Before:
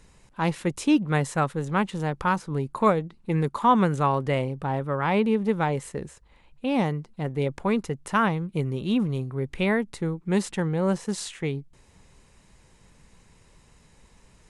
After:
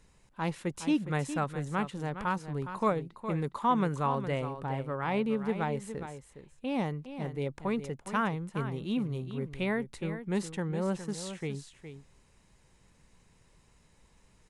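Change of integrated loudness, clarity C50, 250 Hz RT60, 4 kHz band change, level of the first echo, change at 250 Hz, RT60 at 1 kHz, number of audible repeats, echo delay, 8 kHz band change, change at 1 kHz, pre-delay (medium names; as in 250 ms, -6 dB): -7.0 dB, no reverb, no reverb, -7.0 dB, -10.5 dB, -7.0 dB, no reverb, 1, 413 ms, -7.0 dB, -7.0 dB, no reverb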